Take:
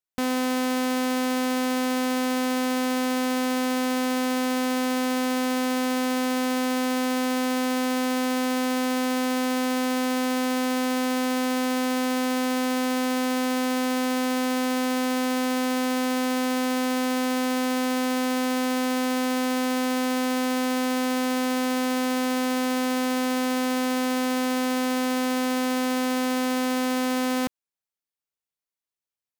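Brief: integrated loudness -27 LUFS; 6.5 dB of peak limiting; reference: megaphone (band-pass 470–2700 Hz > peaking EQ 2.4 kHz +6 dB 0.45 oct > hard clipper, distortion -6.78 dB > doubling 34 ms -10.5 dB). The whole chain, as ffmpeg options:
-filter_complex "[0:a]alimiter=level_in=1.33:limit=0.0631:level=0:latency=1,volume=0.75,highpass=470,lowpass=2700,equalizer=f=2400:t=o:w=0.45:g=6,asoftclip=type=hard:threshold=0.0251,asplit=2[s0][s1];[s1]adelay=34,volume=0.299[s2];[s0][s2]amix=inputs=2:normalize=0,volume=4.47"

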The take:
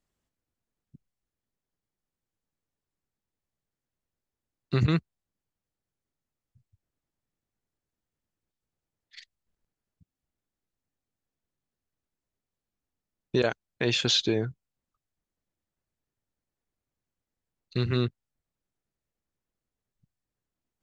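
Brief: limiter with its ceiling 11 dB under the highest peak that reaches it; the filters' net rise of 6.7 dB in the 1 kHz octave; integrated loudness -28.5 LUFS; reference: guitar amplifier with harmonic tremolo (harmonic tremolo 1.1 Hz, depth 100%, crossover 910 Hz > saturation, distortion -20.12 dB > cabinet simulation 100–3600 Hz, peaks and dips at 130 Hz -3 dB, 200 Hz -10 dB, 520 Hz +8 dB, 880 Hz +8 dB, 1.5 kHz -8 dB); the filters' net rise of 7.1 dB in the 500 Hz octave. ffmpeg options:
-filter_complex "[0:a]equalizer=f=500:t=o:g=4,equalizer=f=1000:t=o:g=4,alimiter=limit=0.1:level=0:latency=1,acrossover=split=910[s0][s1];[s0]aeval=exprs='val(0)*(1-1/2+1/2*cos(2*PI*1.1*n/s))':c=same[s2];[s1]aeval=exprs='val(0)*(1-1/2-1/2*cos(2*PI*1.1*n/s))':c=same[s3];[s2][s3]amix=inputs=2:normalize=0,asoftclip=threshold=0.0668,highpass=100,equalizer=f=130:t=q:w=4:g=-3,equalizer=f=200:t=q:w=4:g=-10,equalizer=f=520:t=q:w=4:g=8,equalizer=f=880:t=q:w=4:g=8,equalizer=f=1500:t=q:w=4:g=-8,lowpass=f=3600:w=0.5412,lowpass=f=3600:w=1.3066,volume=2.99"

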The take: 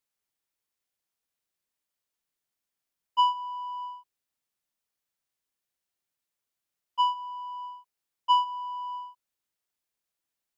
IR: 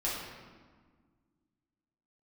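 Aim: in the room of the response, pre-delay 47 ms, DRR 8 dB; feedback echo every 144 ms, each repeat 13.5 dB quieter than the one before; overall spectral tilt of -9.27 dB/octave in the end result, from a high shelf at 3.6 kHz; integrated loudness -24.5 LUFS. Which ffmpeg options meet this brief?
-filter_complex "[0:a]highshelf=f=3600:g=-4.5,aecho=1:1:144|288:0.211|0.0444,asplit=2[s0][s1];[1:a]atrim=start_sample=2205,adelay=47[s2];[s1][s2]afir=irnorm=-1:irlink=0,volume=0.2[s3];[s0][s3]amix=inputs=2:normalize=0,volume=1.88"

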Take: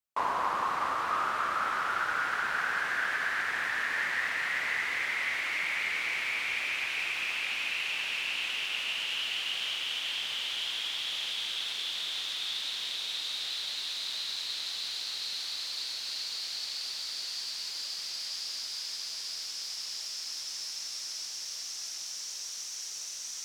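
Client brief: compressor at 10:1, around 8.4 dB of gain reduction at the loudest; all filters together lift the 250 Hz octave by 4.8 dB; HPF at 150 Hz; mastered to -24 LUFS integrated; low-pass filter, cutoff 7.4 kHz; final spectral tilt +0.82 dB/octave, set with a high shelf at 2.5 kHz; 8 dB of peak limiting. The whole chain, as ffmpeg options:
-af "highpass=150,lowpass=7400,equalizer=f=250:t=o:g=7,highshelf=f=2500:g=-8.5,acompressor=threshold=0.0158:ratio=10,volume=7.08,alimiter=limit=0.15:level=0:latency=1"

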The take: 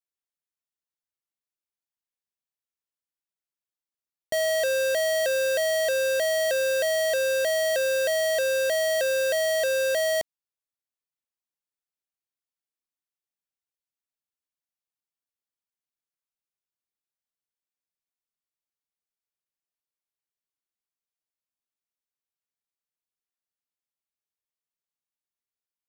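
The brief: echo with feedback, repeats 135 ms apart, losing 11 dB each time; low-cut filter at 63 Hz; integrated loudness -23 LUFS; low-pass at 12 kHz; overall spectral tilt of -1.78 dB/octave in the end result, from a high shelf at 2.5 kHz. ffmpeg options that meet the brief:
-af "highpass=63,lowpass=12000,highshelf=f=2500:g=-8,aecho=1:1:135|270|405:0.282|0.0789|0.0221,volume=1.26"

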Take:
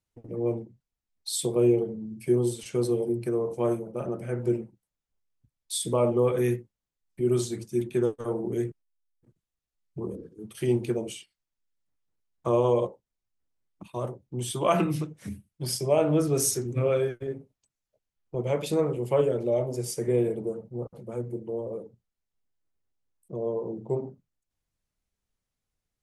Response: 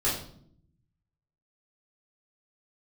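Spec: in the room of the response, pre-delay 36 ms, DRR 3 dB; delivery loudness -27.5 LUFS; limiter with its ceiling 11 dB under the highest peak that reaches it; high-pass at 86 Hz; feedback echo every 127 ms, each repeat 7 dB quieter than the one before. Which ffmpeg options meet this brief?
-filter_complex "[0:a]highpass=86,alimiter=limit=0.0841:level=0:latency=1,aecho=1:1:127|254|381|508|635:0.447|0.201|0.0905|0.0407|0.0183,asplit=2[s0][s1];[1:a]atrim=start_sample=2205,adelay=36[s2];[s1][s2]afir=irnorm=-1:irlink=0,volume=0.224[s3];[s0][s3]amix=inputs=2:normalize=0"

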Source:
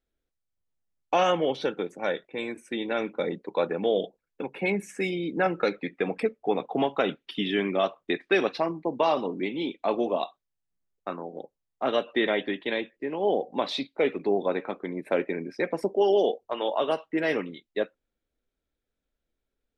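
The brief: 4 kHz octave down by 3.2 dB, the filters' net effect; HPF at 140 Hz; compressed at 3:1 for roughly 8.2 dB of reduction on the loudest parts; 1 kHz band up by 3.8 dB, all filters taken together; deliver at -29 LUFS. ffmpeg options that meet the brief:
-af "highpass=140,equalizer=f=1000:t=o:g=5.5,equalizer=f=4000:t=o:g=-4.5,acompressor=threshold=0.0398:ratio=3,volume=1.58"

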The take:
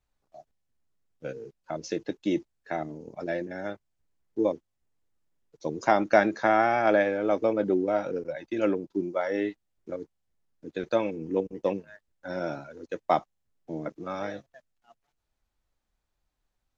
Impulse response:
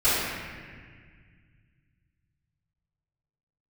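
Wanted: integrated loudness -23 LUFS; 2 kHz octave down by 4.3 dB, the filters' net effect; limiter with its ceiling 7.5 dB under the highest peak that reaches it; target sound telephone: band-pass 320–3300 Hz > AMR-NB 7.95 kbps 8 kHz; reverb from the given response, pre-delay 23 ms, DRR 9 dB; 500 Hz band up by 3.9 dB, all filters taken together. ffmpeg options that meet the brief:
-filter_complex "[0:a]equalizer=f=500:t=o:g=6,equalizer=f=2000:t=o:g=-6,alimiter=limit=0.237:level=0:latency=1,asplit=2[s0][s1];[1:a]atrim=start_sample=2205,adelay=23[s2];[s1][s2]afir=irnorm=-1:irlink=0,volume=0.0473[s3];[s0][s3]amix=inputs=2:normalize=0,highpass=320,lowpass=3300,volume=1.88" -ar 8000 -c:a libopencore_amrnb -b:a 7950

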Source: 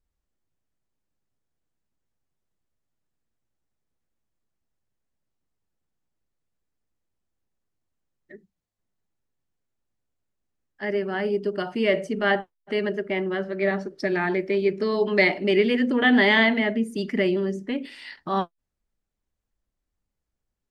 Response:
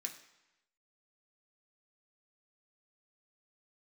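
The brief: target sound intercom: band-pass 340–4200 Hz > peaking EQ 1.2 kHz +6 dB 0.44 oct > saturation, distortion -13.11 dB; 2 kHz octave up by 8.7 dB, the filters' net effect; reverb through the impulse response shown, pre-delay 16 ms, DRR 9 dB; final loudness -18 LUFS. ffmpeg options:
-filter_complex "[0:a]equalizer=f=2000:t=o:g=9,asplit=2[s0][s1];[1:a]atrim=start_sample=2205,adelay=16[s2];[s1][s2]afir=irnorm=-1:irlink=0,volume=0.473[s3];[s0][s3]amix=inputs=2:normalize=0,highpass=340,lowpass=4200,equalizer=f=1200:t=o:w=0.44:g=6,asoftclip=threshold=0.355,volume=1.33"

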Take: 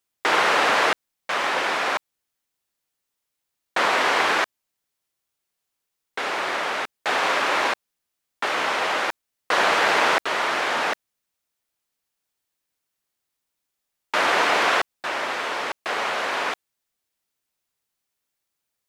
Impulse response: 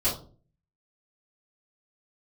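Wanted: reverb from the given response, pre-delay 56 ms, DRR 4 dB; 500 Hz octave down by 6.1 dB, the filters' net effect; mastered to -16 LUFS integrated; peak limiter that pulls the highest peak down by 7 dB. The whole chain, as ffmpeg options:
-filter_complex "[0:a]equalizer=f=500:t=o:g=-8,alimiter=limit=0.178:level=0:latency=1,asplit=2[s0][s1];[1:a]atrim=start_sample=2205,adelay=56[s2];[s1][s2]afir=irnorm=-1:irlink=0,volume=0.2[s3];[s0][s3]amix=inputs=2:normalize=0,volume=2.51"

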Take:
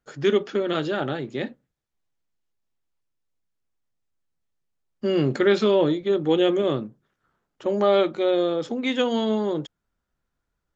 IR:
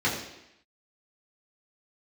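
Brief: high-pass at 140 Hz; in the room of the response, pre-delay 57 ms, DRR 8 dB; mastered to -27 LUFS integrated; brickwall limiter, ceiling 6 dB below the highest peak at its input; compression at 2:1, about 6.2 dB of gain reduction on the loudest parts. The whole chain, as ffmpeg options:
-filter_complex "[0:a]highpass=140,acompressor=threshold=0.0501:ratio=2,alimiter=limit=0.0944:level=0:latency=1,asplit=2[s0][s1];[1:a]atrim=start_sample=2205,adelay=57[s2];[s1][s2]afir=irnorm=-1:irlink=0,volume=0.0891[s3];[s0][s3]amix=inputs=2:normalize=0,volume=1.33"

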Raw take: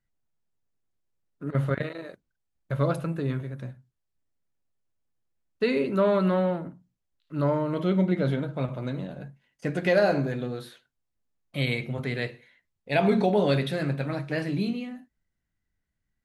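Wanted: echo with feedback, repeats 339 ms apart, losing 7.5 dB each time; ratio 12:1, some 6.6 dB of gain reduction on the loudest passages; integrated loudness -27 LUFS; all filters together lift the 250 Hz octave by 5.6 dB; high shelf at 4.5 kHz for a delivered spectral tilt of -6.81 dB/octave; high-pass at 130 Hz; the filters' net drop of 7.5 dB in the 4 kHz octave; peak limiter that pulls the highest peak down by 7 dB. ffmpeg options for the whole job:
-af "highpass=130,equalizer=f=250:t=o:g=8.5,equalizer=f=4000:t=o:g=-5.5,highshelf=f=4500:g=-8,acompressor=threshold=0.0891:ratio=12,alimiter=limit=0.1:level=0:latency=1,aecho=1:1:339|678|1017|1356|1695:0.422|0.177|0.0744|0.0312|0.0131,volume=1.41"

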